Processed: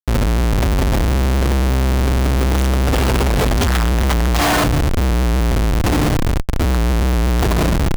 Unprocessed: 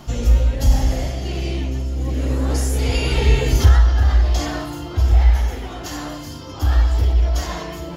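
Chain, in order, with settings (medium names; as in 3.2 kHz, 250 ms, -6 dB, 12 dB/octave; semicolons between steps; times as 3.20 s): 3.64–4.64 s: high-order bell 1.8 kHz +8.5 dB 3 oct; Schmitt trigger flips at -25 dBFS; trim +2 dB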